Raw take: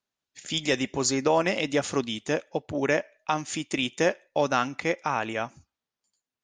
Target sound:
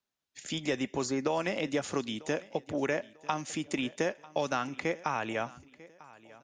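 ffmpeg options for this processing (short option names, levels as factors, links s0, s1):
-filter_complex "[0:a]acrossover=split=150|1900[s0][s1][s2];[s0]acompressor=threshold=0.00447:ratio=4[s3];[s1]acompressor=threshold=0.0501:ratio=4[s4];[s2]acompressor=threshold=0.0126:ratio=4[s5];[s3][s4][s5]amix=inputs=3:normalize=0,aecho=1:1:945|1890|2835:0.0891|0.0312|0.0109,volume=0.841"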